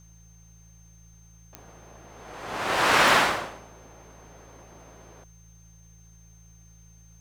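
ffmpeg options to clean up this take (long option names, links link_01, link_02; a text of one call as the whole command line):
ffmpeg -i in.wav -af "adeclick=threshold=4,bandreject=frequency=55.2:width_type=h:width=4,bandreject=frequency=110.4:width_type=h:width=4,bandreject=frequency=165.6:width_type=h:width=4,bandreject=frequency=6300:width=30,agate=range=-21dB:threshold=-45dB" out.wav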